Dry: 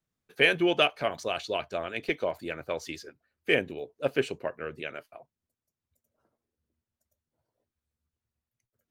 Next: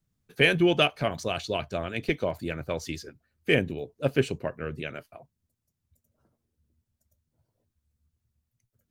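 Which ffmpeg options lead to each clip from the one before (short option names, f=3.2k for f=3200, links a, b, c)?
-af "bass=f=250:g=13,treble=f=4k:g=4"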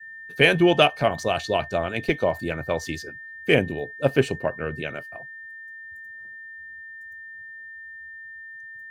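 -af "aeval=exprs='val(0)+0.00891*sin(2*PI*1800*n/s)':c=same,adynamicequalizer=threshold=0.01:dfrequency=790:dqfactor=1.3:tfrequency=790:tqfactor=1.3:attack=5:release=100:ratio=0.375:range=3:mode=boostabove:tftype=bell,volume=3dB"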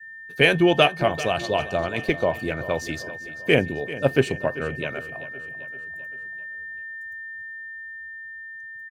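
-af "dynaudnorm=f=360:g=11:m=3.5dB,aecho=1:1:390|780|1170|1560|1950:0.168|0.0907|0.049|0.0264|0.0143"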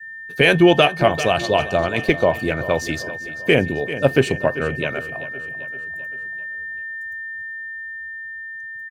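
-af "alimiter=level_in=6.5dB:limit=-1dB:release=50:level=0:latency=1,volume=-1dB"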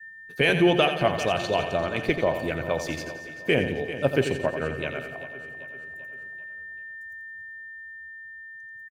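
-af "aecho=1:1:87|174|261|348|435|522:0.355|0.177|0.0887|0.0444|0.0222|0.0111,volume=-7dB"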